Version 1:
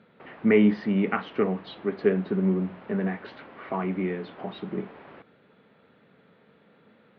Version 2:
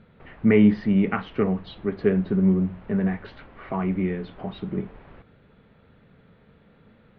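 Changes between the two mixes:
background -4.0 dB; master: remove HPF 230 Hz 12 dB/oct

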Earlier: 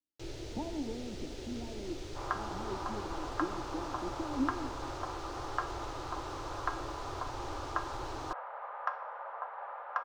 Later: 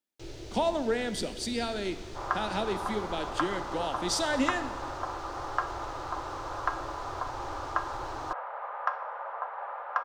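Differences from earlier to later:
speech: remove vocal tract filter u; second sound +5.0 dB

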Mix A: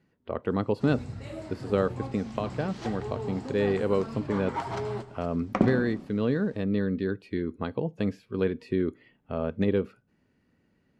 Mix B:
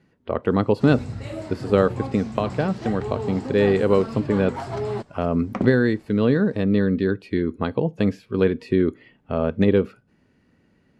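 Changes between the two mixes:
speech +7.5 dB; first sound +7.5 dB; reverb: off

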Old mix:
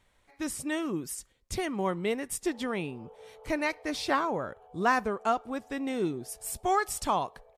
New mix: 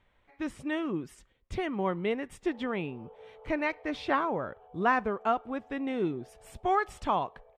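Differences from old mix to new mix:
speech: add band shelf 7000 Hz -10.5 dB; master: add air absorption 71 m

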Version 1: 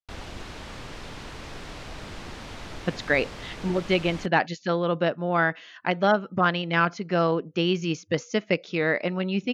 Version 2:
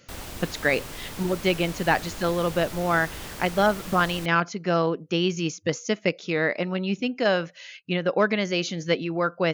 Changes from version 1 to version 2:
speech: entry -2.45 s; master: remove LPF 4700 Hz 12 dB/oct

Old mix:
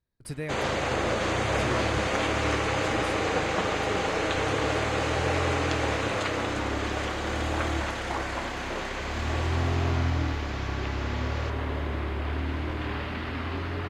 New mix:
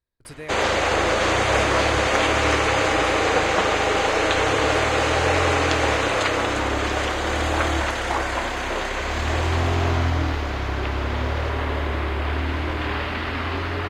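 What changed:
first sound +8.5 dB; master: add bell 160 Hz -8 dB 1.8 oct

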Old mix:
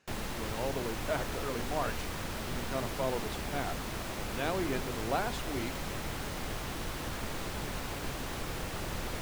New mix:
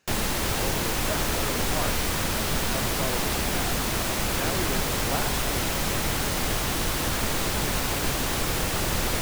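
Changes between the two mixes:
background +10.0 dB; master: add high shelf 4100 Hz +7 dB

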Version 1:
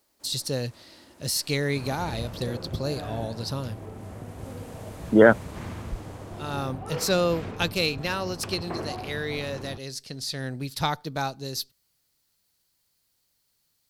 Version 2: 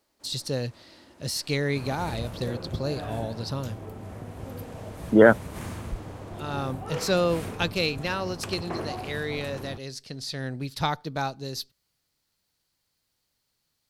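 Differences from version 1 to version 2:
second sound: remove air absorption 180 m; master: add high shelf 7300 Hz -9.5 dB

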